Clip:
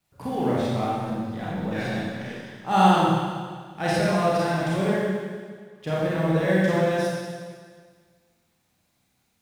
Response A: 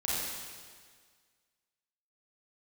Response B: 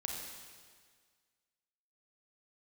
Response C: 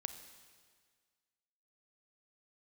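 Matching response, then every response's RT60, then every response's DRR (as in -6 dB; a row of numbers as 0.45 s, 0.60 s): A; 1.7 s, 1.7 s, 1.7 s; -8.0 dB, -0.5 dB, 9.0 dB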